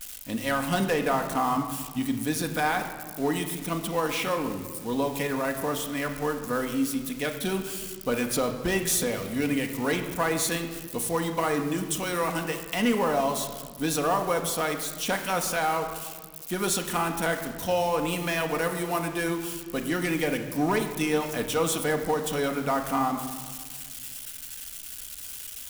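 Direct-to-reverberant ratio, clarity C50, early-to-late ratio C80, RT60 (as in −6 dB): 3.5 dB, 8.0 dB, 9.5 dB, 1.6 s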